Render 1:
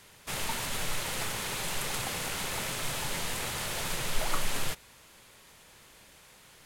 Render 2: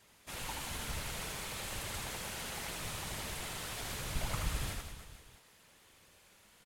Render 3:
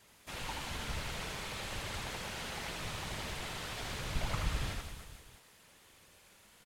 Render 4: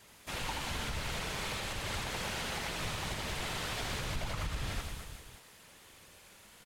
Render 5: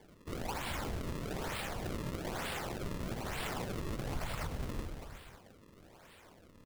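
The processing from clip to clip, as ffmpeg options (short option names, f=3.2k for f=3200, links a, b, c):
-af "afftfilt=real='hypot(re,im)*cos(2*PI*random(0))':imag='hypot(re,im)*sin(2*PI*random(1))':win_size=512:overlap=0.75,aecho=1:1:80|180|305|461.2|656.6:0.631|0.398|0.251|0.158|0.1,volume=-3.5dB"
-filter_complex "[0:a]acrossover=split=6100[a][b];[b]acompressor=threshold=-56dB:ratio=4:attack=1:release=60[c];[a][c]amix=inputs=2:normalize=0,volume=1.5dB"
-af "alimiter=level_in=7dB:limit=-24dB:level=0:latency=1:release=160,volume=-7dB,volume=4.5dB"
-af "bandreject=f=50:t=h:w=6,bandreject=f=100:t=h:w=6,acrusher=samples=33:mix=1:aa=0.000001:lfo=1:lforange=52.8:lforate=1.1,volume=-1dB"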